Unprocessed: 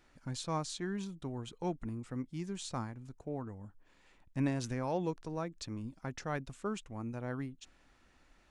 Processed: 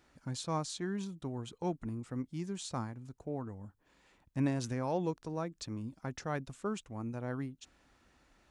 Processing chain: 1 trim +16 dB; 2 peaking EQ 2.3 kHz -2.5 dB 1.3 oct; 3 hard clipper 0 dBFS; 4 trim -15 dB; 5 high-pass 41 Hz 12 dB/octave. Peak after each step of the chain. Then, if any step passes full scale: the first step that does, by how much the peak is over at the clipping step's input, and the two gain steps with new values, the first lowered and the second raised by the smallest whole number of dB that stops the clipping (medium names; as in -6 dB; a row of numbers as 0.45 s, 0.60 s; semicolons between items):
-4.5 dBFS, -4.5 dBFS, -4.5 dBFS, -19.5 dBFS, -20.5 dBFS; nothing clips